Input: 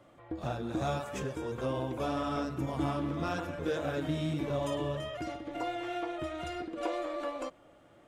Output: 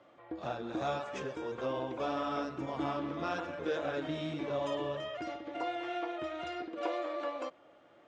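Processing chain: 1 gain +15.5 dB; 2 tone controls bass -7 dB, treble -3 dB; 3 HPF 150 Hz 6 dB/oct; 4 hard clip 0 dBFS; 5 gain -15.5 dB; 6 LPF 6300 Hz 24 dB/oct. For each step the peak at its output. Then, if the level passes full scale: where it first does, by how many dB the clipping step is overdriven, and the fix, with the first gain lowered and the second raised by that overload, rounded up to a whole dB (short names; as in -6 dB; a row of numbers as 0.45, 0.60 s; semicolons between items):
-5.0, -5.0, -5.0, -5.0, -20.5, -20.5 dBFS; no overload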